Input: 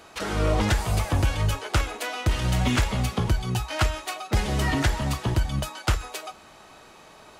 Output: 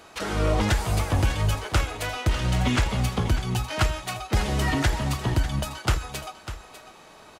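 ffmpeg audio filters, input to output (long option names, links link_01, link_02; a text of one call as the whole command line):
ffmpeg -i in.wav -filter_complex "[0:a]asettb=1/sr,asplit=3[link_01][link_02][link_03];[link_01]atrim=end=2.294[link_04];[link_02]atrim=start=2.29:end=2.9,asetpts=PTS-STARTPTS,afade=type=in:duration=0.004:curve=qsin,afade=type=out:start_time=0.606:duration=0.004:curve=qsin,highshelf=frequency=12000:gain=-10.5[link_05];[link_03]atrim=start=2.896[link_06];[link_04][link_05]acrossfade=duration=0.004:curve1=hsin:curve2=qsin[link_07];[link_07][link_06]acrossfade=duration=0.004:curve1=qsin:curve2=hsin,aecho=1:1:598:0.237" out.wav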